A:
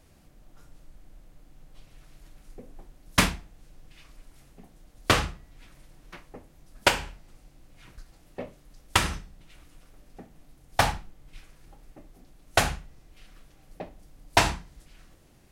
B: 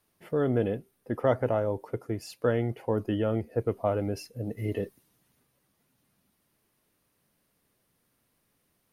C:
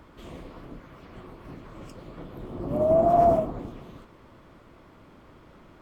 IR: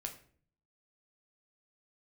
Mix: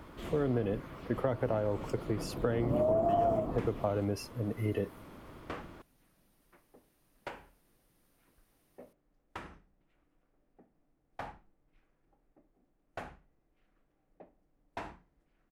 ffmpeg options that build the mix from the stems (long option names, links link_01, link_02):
-filter_complex "[0:a]acrossover=split=240 2300:gain=0.178 1 0.141[link_01][link_02][link_03];[link_01][link_02][link_03]amix=inputs=3:normalize=0,asoftclip=type=tanh:threshold=-16dB,lowshelf=frequency=400:gain=9.5,adelay=400,volume=-18dB[link_04];[1:a]acrossover=split=250[link_05][link_06];[link_06]acompressor=threshold=-24dB:ratio=6[link_07];[link_05][link_07]amix=inputs=2:normalize=0,volume=-0.5dB[link_08];[2:a]volume=1dB[link_09];[link_04][link_08][link_09]amix=inputs=3:normalize=0,acompressor=threshold=-26dB:ratio=6"